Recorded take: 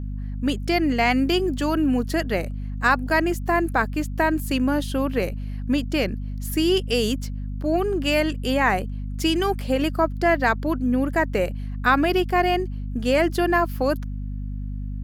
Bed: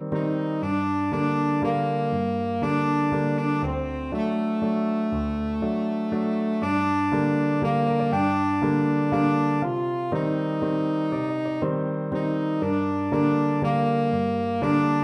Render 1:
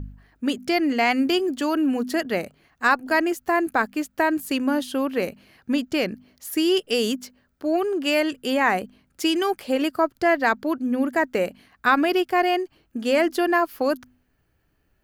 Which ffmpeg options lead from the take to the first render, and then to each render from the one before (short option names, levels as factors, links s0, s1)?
-af "bandreject=f=50:t=h:w=4,bandreject=f=100:t=h:w=4,bandreject=f=150:t=h:w=4,bandreject=f=200:t=h:w=4,bandreject=f=250:t=h:w=4"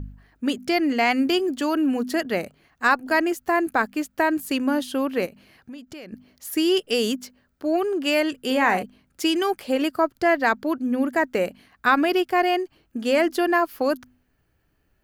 -filter_complex "[0:a]asettb=1/sr,asplit=3[s0][s1][s2];[s0]atrim=end=5.264[s3];[s1]atrim=start=5.26:end=6.13,asetpts=PTS-STARTPTS,afade=t=in:d=0.004:c=qsin,afade=t=out:st=0.866:d=0.004:c=qsin,acompressor=threshold=0.0112:ratio=4:attack=3.2:release=140:knee=1:detection=peak[s4];[s2]atrim=start=6.126[s5];[s3][s4]acrossfade=d=0.004:c1=hsin:c2=qsin[s6];[s6][s5]acrossfade=d=0.004:c1=qsin:c2=hsin,asettb=1/sr,asplit=3[s7][s8][s9];[s7]atrim=end=8.404[s10];[s8]atrim=start=8.4:end=8.83,asetpts=PTS-STARTPTS,afade=t=in:d=0.004:c=qsin,afade=t=out:st=0.426:d=0.004:c=qsin,asplit=2[s11][s12];[s12]adelay=47,volume=0.355[s13];[s11][s13]amix=inputs=2:normalize=0,atrim=end_sample=18963[s14];[s9]atrim=start=8.826[s15];[s10][s14]acrossfade=d=0.004:c1=hsin:c2=qsin[s16];[s16][s15]acrossfade=d=0.004:c1=qsin:c2=hsin"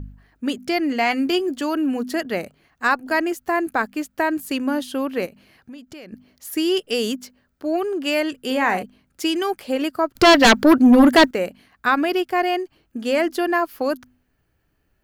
-filter_complex "[0:a]asettb=1/sr,asplit=3[s0][s1][s2];[s0]atrim=end=0.944[s3];[s1]atrim=start=0.94:end=1.61,asetpts=PTS-STARTPTS,afade=t=in:d=0.004:c=qsin,afade=t=out:st=0.666:d=0.004:c=qsin,asplit=2[s4][s5];[s5]adelay=14,volume=0.251[s6];[s4][s6]amix=inputs=2:normalize=0,atrim=end_sample=29547[s7];[s2]atrim=start=1.606[s8];[s3][s7]acrossfade=d=0.004:c1=hsin:c2=qsin[s9];[s9][s8]acrossfade=d=0.004:c1=qsin:c2=hsin,asettb=1/sr,asplit=3[s10][s11][s12];[s10]atrim=end=10.154[s13];[s11]atrim=start=10.15:end=11.31,asetpts=PTS-STARTPTS,afade=t=in:d=0.004:c=qsin,afade=t=out:st=1.156:d=0.004:c=qsin,aeval=exprs='0.447*sin(PI/2*3.55*val(0)/0.447)':c=same[s14];[s12]atrim=start=11.306[s15];[s13][s14]acrossfade=d=0.004:c1=hsin:c2=qsin[s16];[s16][s15]acrossfade=d=0.004:c1=qsin:c2=hsin"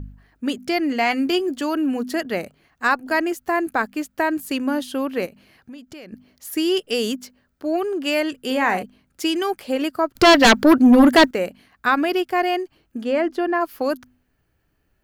-filter_complex "[0:a]asplit=3[s0][s1][s2];[s0]afade=t=out:st=13.03:d=0.02[s3];[s1]lowpass=f=1600:p=1,afade=t=in:st=13.03:d=0.02,afade=t=out:st=13.6:d=0.02[s4];[s2]afade=t=in:st=13.6:d=0.02[s5];[s3][s4][s5]amix=inputs=3:normalize=0"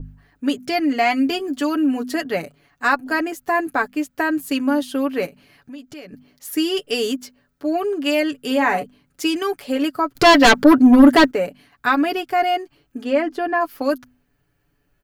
-af "aecho=1:1:7:0.64,adynamicequalizer=threshold=0.0355:dfrequency=1800:dqfactor=0.7:tfrequency=1800:tqfactor=0.7:attack=5:release=100:ratio=0.375:range=2:mode=cutabove:tftype=highshelf"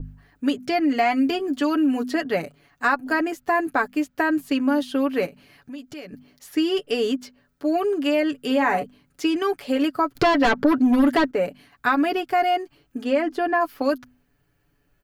-filter_complex "[0:a]acrossover=split=2000|5300[s0][s1][s2];[s0]acompressor=threshold=0.158:ratio=4[s3];[s1]acompressor=threshold=0.02:ratio=4[s4];[s2]acompressor=threshold=0.00316:ratio=4[s5];[s3][s4][s5]amix=inputs=3:normalize=0"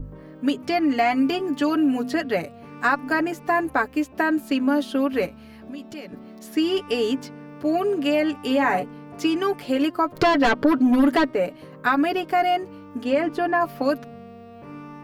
-filter_complex "[1:a]volume=0.126[s0];[0:a][s0]amix=inputs=2:normalize=0"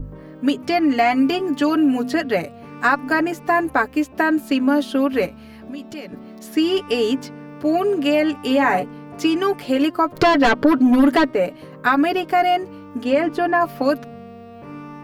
-af "volume=1.5"